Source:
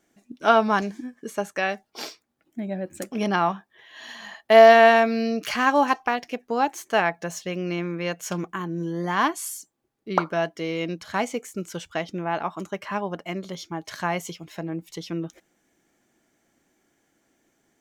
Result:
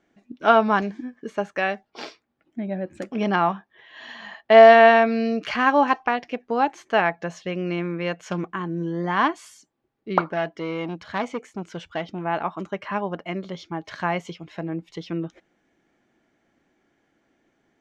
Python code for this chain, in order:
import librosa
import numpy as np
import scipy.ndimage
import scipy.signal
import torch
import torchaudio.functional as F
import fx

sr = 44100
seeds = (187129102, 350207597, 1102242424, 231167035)

y = scipy.signal.sosfilt(scipy.signal.butter(2, 3400.0, 'lowpass', fs=sr, output='sos'), x)
y = fx.transformer_sat(y, sr, knee_hz=1300.0, at=(10.21, 12.25))
y = y * 10.0 ** (1.5 / 20.0)